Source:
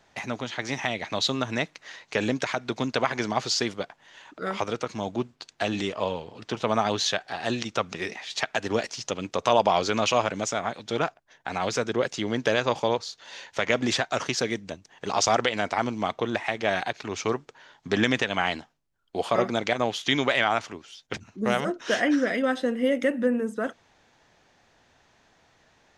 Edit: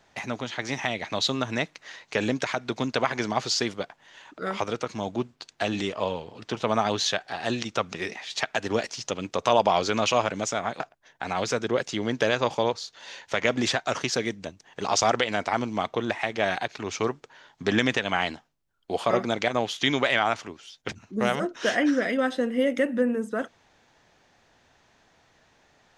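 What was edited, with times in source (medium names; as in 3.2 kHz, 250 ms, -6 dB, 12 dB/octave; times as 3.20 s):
10.80–11.05 s: delete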